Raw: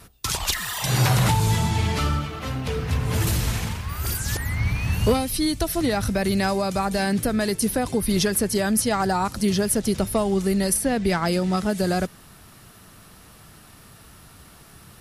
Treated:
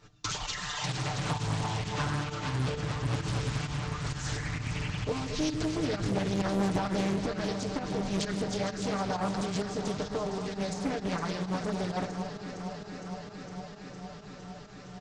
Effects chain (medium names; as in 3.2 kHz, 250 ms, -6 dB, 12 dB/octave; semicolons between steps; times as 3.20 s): compression, threshold -24 dBFS, peak gain reduction 9.5 dB; on a send at -14.5 dB: reverberation RT60 1.1 s, pre-delay 68 ms; on the sum: flange 0.17 Hz, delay 9 ms, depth 8.1 ms, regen +58%; 5.49–7.16 s: peaking EQ 150 Hz +8 dB 0.75 oct; echo whose repeats swap between lows and highs 230 ms, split 1.2 kHz, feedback 90%, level -8.5 dB; resampled via 16 kHz; volume shaper 131 bpm, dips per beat 1, -11 dB, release 85 ms; comb 6.7 ms, depth 81%; loudspeaker Doppler distortion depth 0.96 ms; trim -2.5 dB